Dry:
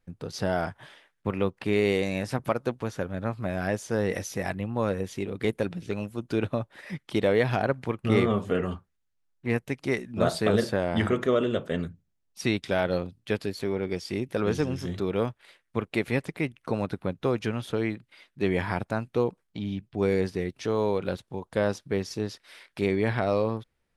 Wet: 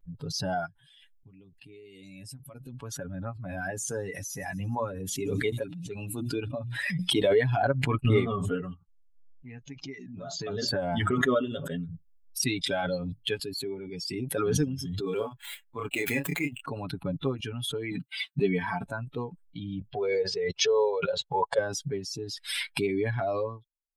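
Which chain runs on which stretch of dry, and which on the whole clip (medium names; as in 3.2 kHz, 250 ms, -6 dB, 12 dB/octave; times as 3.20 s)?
0.66–2.74 s: peaking EQ 980 Hz -10 dB 2 oct + compression 3:1, threshold -34 dBFS
3.48–7.36 s: hum notches 60/120/180/240/300/360 Hz + feedback echo behind a high-pass 79 ms, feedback 72%, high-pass 4.6 kHz, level -12 dB
8.74–10.68 s: compression 2:1, threshold -33 dBFS + careless resampling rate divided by 3×, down none, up filtered
15.01–16.61 s: median filter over 9 samples + tone controls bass -6 dB, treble +4 dB + doubling 28 ms -2 dB
17.91–18.84 s: high-pass 70 Hz + comb 4.5 ms, depth 45%
19.93–21.59 s: low-pass 7 kHz 24 dB/octave + resonant low shelf 380 Hz -7 dB, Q 3
whole clip: expander on every frequency bin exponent 2; comb 7.1 ms, depth 75%; swell ahead of each attack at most 22 dB/s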